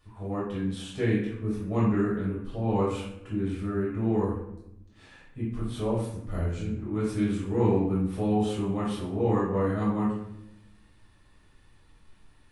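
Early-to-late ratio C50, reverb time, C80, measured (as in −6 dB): 1.5 dB, 0.85 s, 5.5 dB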